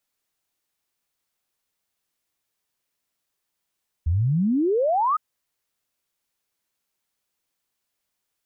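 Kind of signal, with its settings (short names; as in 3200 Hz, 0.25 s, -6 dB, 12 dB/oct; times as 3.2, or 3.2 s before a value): log sweep 75 Hz -> 1300 Hz 1.11 s -18 dBFS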